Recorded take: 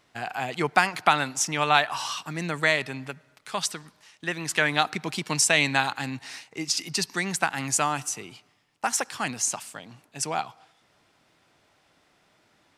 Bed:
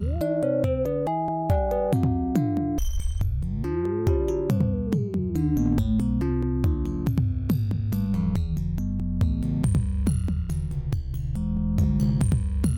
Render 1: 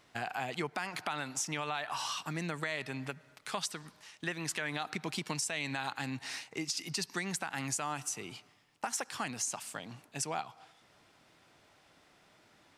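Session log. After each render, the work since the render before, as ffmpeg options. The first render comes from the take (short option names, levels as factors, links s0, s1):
-af "alimiter=limit=0.188:level=0:latency=1:release=100,acompressor=threshold=0.0158:ratio=2.5"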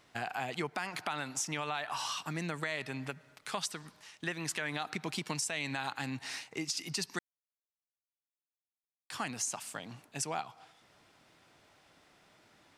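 -filter_complex "[0:a]asplit=3[s0][s1][s2];[s0]atrim=end=7.19,asetpts=PTS-STARTPTS,afade=t=out:st=7.186:d=0.004:c=hsin[s3];[s1]atrim=start=7.19:end=9.1,asetpts=PTS-STARTPTS,volume=0[s4];[s2]atrim=start=9.1,asetpts=PTS-STARTPTS,afade=t=in:d=0.004:c=hsin[s5];[s3][s4][s5]concat=n=3:v=0:a=1"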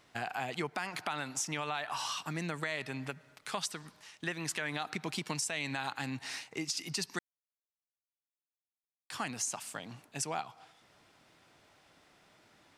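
-af anull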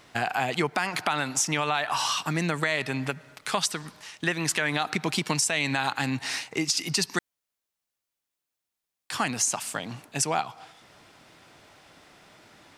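-af "volume=3.16"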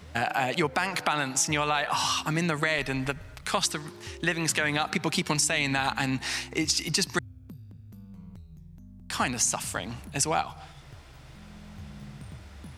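-filter_complex "[1:a]volume=0.0841[s0];[0:a][s0]amix=inputs=2:normalize=0"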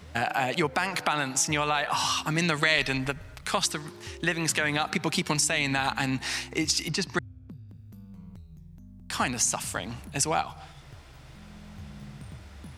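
-filter_complex "[0:a]asettb=1/sr,asplit=3[s0][s1][s2];[s0]atrim=end=2.384[s3];[s1]atrim=start=2.38:end=2.98,asetpts=PTS-STARTPTS,afade=t=in:d=0.004:c=qsin,afade=t=out:st=0.596:d=0.004:c=qsin,equalizer=f=3900:w=0.73:g=8[s4];[s2]atrim=start=2.976[s5];[s3][s4]acrossfade=d=0.004:c1=hsin:c2=qsin[s6];[s6][s5]acrossfade=d=0.004:c1=qsin:c2=hsin,asettb=1/sr,asplit=3[s7][s8][s9];[s7]atrim=end=6.884[s10];[s8]atrim=start=6.88:end=7.69,asetpts=PTS-STARTPTS,afade=t=in:d=0.004:c=qsin,afade=t=out:st=0.806:d=0.004:c=qsin,aemphasis=mode=reproduction:type=50fm[s11];[s9]atrim=start=7.686[s12];[s10][s11]acrossfade=d=0.004:c1=hsin:c2=qsin[s13];[s13][s12]acrossfade=d=0.004:c1=qsin:c2=hsin"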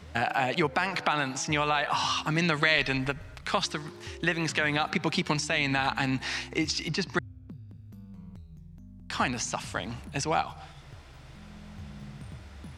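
-filter_complex "[0:a]highshelf=f=11000:g=-9,acrossover=split=6000[s0][s1];[s1]acompressor=threshold=0.00251:ratio=4:attack=1:release=60[s2];[s0][s2]amix=inputs=2:normalize=0"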